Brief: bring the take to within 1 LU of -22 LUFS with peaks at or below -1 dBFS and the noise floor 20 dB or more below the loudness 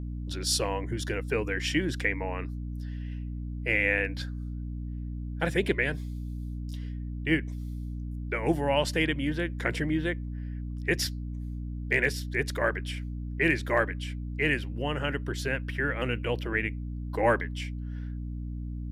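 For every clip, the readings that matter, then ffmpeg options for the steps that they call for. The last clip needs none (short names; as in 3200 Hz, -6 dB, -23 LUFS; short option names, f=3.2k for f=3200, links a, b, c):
hum 60 Hz; harmonics up to 300 Hz; hum level -32 dBFS; loudness -30.5 LUFS; peak -10.5 dBFS; loudness target -22.0 LUFS
-> -af "bandreject=f=60:t=h:w=4,bandreject=f=120:t=h:w=4,bandreject=f=180:t=h:w=4,bandreject=f=240:t=h:w=4,bandreject=f=300:t=h:w=4"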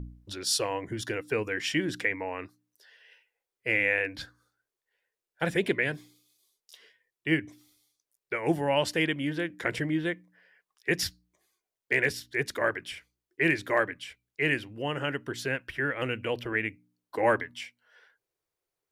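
hum none; loudness -29.5 LUFS; peak -11.5 dBFS; loudness target -22.0 LUFS
-> -af "volume=7.5dB"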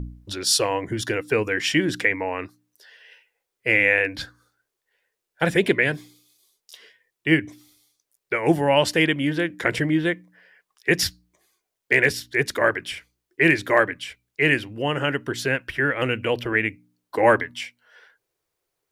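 loudness -22.0 LUFS; peak -4.0 dBFS; noise floor -82 dBFS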